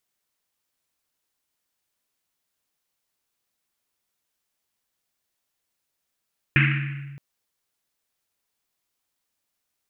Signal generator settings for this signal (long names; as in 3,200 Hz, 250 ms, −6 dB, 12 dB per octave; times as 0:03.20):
drum after Risset length 0.62 s, pitch 140 Hz, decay 1.78 s, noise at 2,100 Hz, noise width 1,200 Hz, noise 40%